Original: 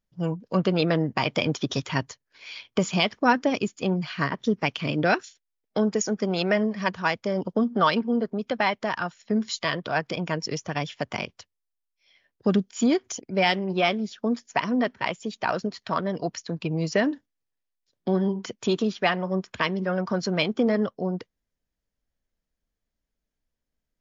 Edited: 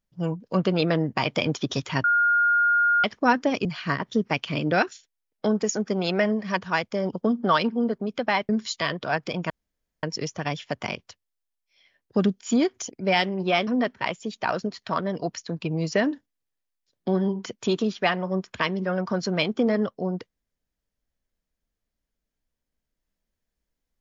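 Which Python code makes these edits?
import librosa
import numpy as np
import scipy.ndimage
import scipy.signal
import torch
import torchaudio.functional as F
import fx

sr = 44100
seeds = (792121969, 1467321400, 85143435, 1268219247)

y = fx.edit(x, sr, fx.bleep(start_s=2.04, length_s=1.0, hz=1420.0, db=-17.0),
    fx.cut(start_s=3.65, length_s=0.32),
    fx.cut(start_s=8.81, length_s=0.51),
    fx.insert_room_tone(at_s=10.33, length_s=0.53),
    fx.cut(start_s=13.97, length_s=0.7), tone=tone)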